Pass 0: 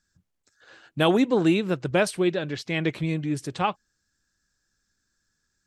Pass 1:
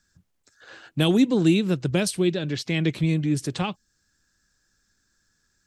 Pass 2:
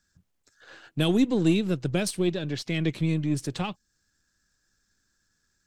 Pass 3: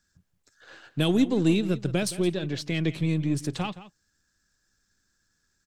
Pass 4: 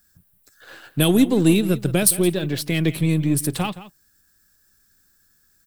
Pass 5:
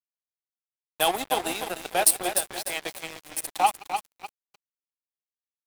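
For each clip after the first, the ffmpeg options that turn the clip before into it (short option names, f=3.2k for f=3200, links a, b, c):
-filter_complex "[0:a]acrossover=split=320|3000[a][b][c];[b]acompressor=threshold=-40dB:ratio=3[d];[a][d][c]amix=inputs=3:normalize=0,volume=5.5dB"
-af "aeval=exprs='if(lt(val(0),0),0.708*val(0),val(0))':c=same,volume=-2dB"
-filter_complex "[0:a]asplit=2[a][b];[b]adelay=169.1,volume=-15dB,highshelf=f=4k:g=-3.8[c];[a][c]amix=inputs=2:normalize=0"
-af "aexciter=amount=9.4:drive=4.6:freq=9.2k,volume=6dB"
-filter_complex "[0:a]highpass=f=780:t=q:w=5.7,asplit=2[a][b];[b]aecho=0:1:299|598|897|1196|1495|1794:0.501|0.236|0.111|0.052|0.0245|0.0115[c];[a][c]amix=inputs=2:normalize=0,aeval=exprs='sgn(val(0))*max(abs(val(0))-0.0422,0)':c=same,volume=-1dB"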